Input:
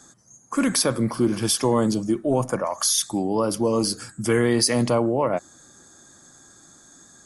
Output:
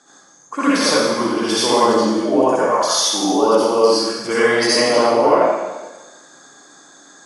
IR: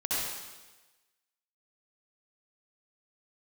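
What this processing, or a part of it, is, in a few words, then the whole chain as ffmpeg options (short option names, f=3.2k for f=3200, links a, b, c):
supermarket ceiling speaker: -filter_complex "[0:a]highpass=340,lowpass=5k[a];[1:a]atrim=start_sample=2205[b];[a][b]afir=irnorm=-1:irlink=0,volume=2.5dB"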